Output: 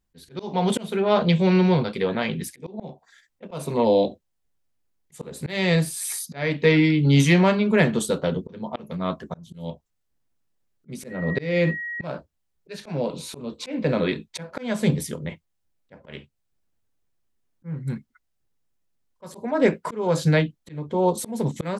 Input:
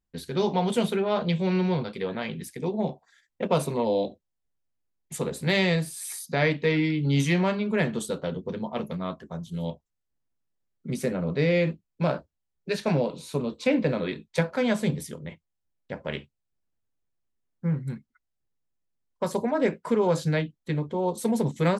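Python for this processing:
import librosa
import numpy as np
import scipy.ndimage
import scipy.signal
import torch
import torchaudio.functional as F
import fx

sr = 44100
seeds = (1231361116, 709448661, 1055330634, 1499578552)

y = fx.dmg_tone(x, sr, hz=1900.0, level_db=-35.0, at=(11.09, 12.05), fade=0.02)
y = fx.auto_swell(y, sr, attack_ms=339.0)
y = y * librosa.db_to_amplitude(6.5)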